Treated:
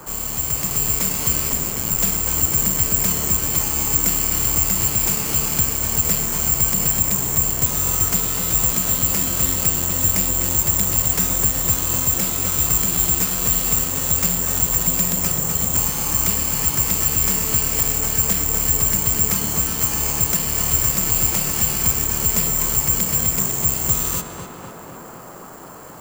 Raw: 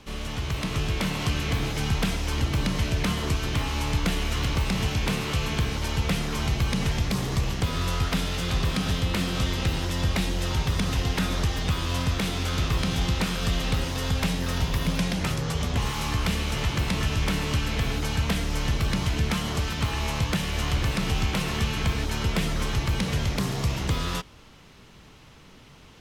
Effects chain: 1.49–1.97 s: ring modulator 150 Hz -> 43 Hz; careless resampling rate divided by 6×, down filtered, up zero stuff; on a send: tape echo 251 ms, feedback 88%, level -5 dB, low-pass 2.5 kHz; on the sum: band noise 110–1300 Hz -39 dBFS; trim -2 dB

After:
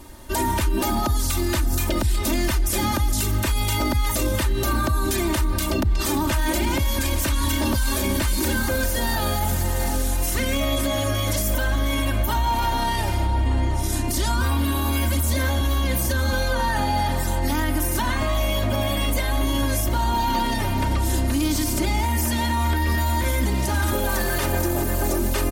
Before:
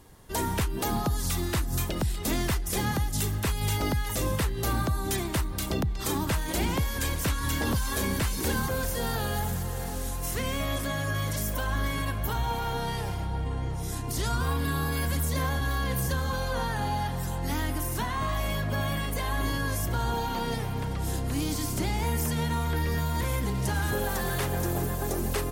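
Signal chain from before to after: comb 3.3 ms, depth 88%; peak limiter -22 dBFS, peak gain reduction 9 dB; trim +8.5 dB

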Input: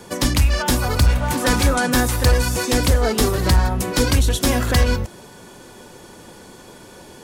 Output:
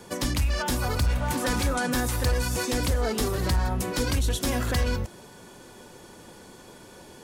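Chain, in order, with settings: peak limiter -12 dBFS, peak gain reduction 4 dB; trim -5.5 dB

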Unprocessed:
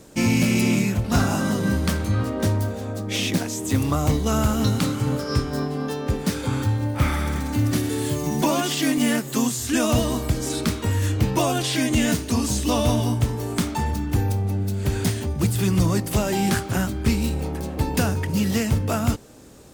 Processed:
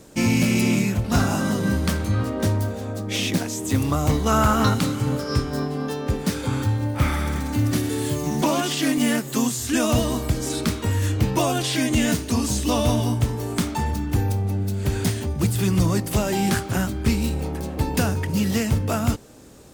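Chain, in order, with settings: 4.08–4.73 s: peaking EQ 1.2 kHz +3.5 dB -> +14.5 dB 1.6 oct; 8.24–8.89 s: loudspeaker Doppler distortion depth 0.11 ms

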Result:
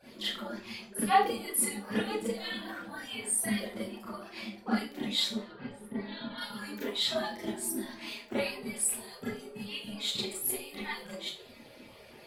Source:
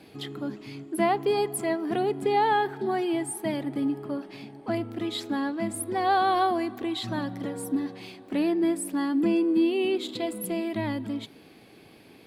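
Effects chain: harmonic-percussive separation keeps percussive; 5.26–6.38 s: distance through air 360 m; Schroeder reverb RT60 0.34 s, combs from 27 ms, DRR -8.5 dB; trim -2.5 dB

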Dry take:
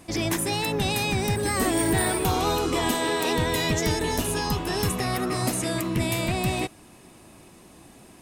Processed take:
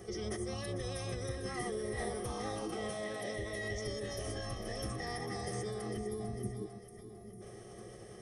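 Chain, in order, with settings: rippled EQ curve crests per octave 1.2, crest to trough 11 dB; compression 2.5:1, threshold -42 dBFS, peak gain reduction 16.5 dB; high-order bell 7.3 kHz +12.5 dB; reverberation RT60 0.35 s, pre-delay 3 ms, DRR 13.5 dB; spectral selection erased 5.98–7.41 s, 670–10000 Hz; two-band feedback delay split 490 Hz, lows 155 ms, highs 449 ms, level -10 dB; formant-preserving pitch shift -7.5 st; trim -3.5 dB

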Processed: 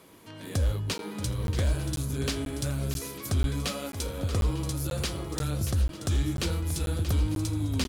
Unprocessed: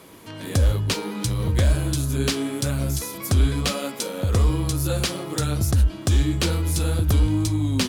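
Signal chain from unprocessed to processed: multi-tap echo 632/772/898 ms -11/-17.5/-18 dB; crackling interface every 0.49 s, samples 512, zero, from 0.98 s; trim -7.5 dB

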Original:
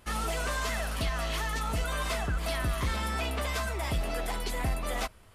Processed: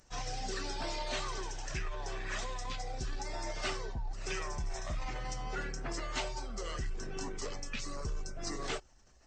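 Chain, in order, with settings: resonances exaggerated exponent 1.5; pre-emphasis filter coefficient 0.8; speed mistake 78 rpm record played at 45 rpm; trim +7 dB

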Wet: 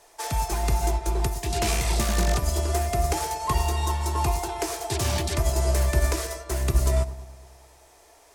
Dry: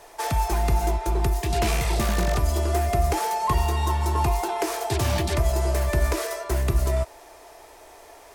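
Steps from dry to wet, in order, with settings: peaking EQ 7.3 kHz +7 dB 1.9 oct; on a send: feedback echo behind a low-pass 107 ms, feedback 66%, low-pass 1.1 kHz, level -12 dB; on the sum: upward expansion 1.5:1, over -33 dBFS

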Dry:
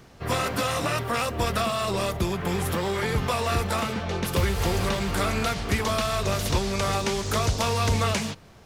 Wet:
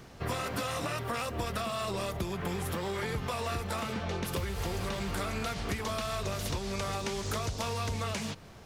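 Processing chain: compression 6:1, threshold -31 dBFS, peak gain reduction 12.5 dB

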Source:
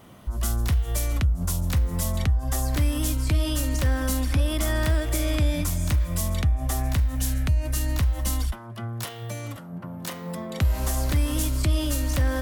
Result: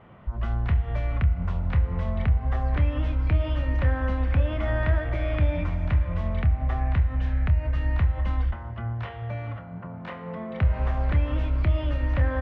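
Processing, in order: low-pass 2.4 kHz 24 dB/octave; peaking EQ 290 Hz -8 dB 0.53 oct; doubling 27 ms -11 dB; FDN reverb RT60 3.9 s, high-frequency decay 0.5×, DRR 10.5 dB

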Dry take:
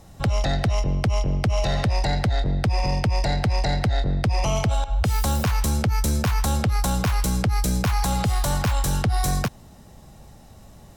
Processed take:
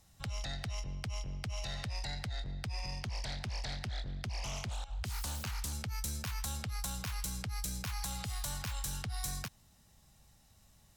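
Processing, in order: amplifier tone stack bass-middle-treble 5-5-5; 3.01–5.73 s: loudspeaker Doppler distortion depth 0.5 ms; trim -3.5 dB

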